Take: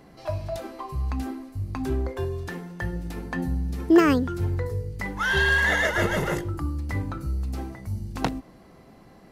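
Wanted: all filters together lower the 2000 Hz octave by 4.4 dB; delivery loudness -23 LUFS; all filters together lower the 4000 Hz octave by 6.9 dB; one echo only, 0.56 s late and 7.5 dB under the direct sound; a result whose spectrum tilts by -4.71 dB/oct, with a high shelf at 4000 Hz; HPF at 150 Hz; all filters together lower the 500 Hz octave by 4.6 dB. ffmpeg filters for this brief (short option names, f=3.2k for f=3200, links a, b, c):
-af "highpass=150,equalizer=f=500:t=o:g=-7,equalizer=f=2k:t=o:g=-3.5,highshelf=f=4k:g=-4,equalizer=f=4k:t=o:g=-5.5,aecho=1:1:560:0.422,volume=7dB"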